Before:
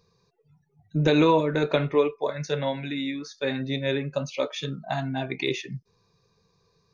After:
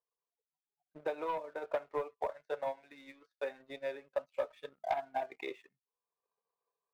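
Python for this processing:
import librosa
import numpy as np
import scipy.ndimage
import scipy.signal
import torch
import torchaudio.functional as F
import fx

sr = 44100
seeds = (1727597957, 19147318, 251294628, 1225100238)

y = fx.dynamic_eq(x, sr, hz=830.0, q=0.9, threshold_db=-41.0, ratio=4.0, max_db=-5, at=(2.83, 4.51))
y = fx.ladder_bandpass(y, sr, hz=860.0, resonance_pct=40)
y = fx.rider(y, sr, range_db=4, speed_s=2.0)
y = fx.leveller(y, sr, passes=2)
y = fx.transient(y, sr, attack_db=8, sustain_db=-6)
y = y * librosa.db_to_amplitude(-8.0)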